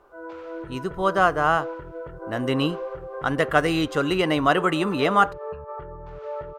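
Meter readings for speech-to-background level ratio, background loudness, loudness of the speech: 13.0 dB, -36.0 LUFS, -23.0 LUFS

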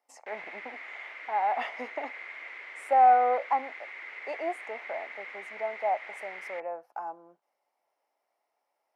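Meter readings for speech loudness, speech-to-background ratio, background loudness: -28.5 LUFS, 13.0 dB, -41.5 LUFS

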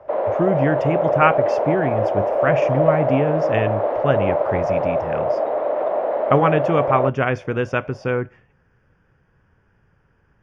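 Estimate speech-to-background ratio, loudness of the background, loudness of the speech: -2.0 dB, -20.5 LUFS, -22.5 LUFS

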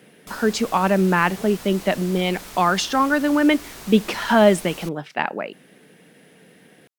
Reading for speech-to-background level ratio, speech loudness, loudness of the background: 17.0 dB, -20.5 LUFS, -37.5 LUFS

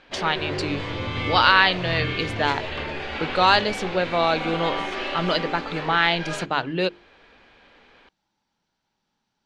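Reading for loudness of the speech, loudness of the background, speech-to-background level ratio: -22.5 LUFS, -29.5 LUFS, 7.0 dB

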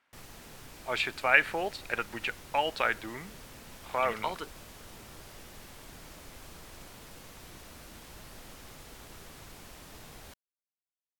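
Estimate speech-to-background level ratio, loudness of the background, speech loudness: 18.5 dB, -48.5 LUFS, -30.0 LUFS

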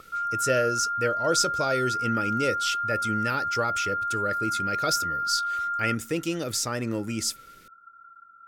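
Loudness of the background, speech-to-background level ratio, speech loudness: -28.0 LUFS, -0.5 dB, -28.5 LUFS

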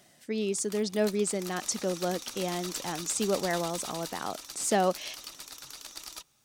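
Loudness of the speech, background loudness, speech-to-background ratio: -31.0 LUFS, -40.0 LUFS, 9.0 dB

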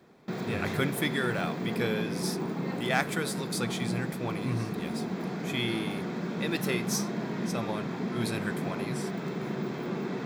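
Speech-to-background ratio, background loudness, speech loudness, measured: 0.0 dB, -34.0 LUFS, -34.0 LUFS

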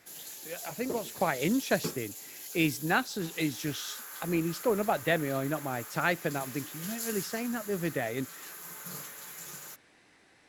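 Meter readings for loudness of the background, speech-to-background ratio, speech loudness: -41.0 LUFS, 9.0 dB, -32.0 LUFS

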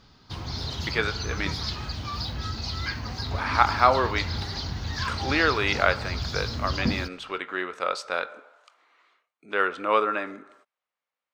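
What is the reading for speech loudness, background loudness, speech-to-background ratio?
-26.5 LUFS, -31.5 LUFS, 5.0 dB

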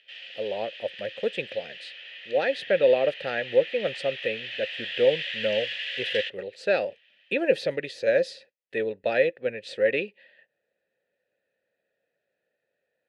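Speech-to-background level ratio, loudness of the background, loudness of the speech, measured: 7.5 dB, -34.5 LUFS, -27.0 LUFS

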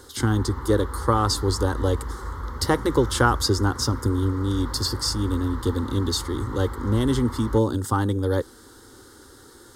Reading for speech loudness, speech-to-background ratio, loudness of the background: -24.0 LUFS, 10.5 dB, -34.5 LUFS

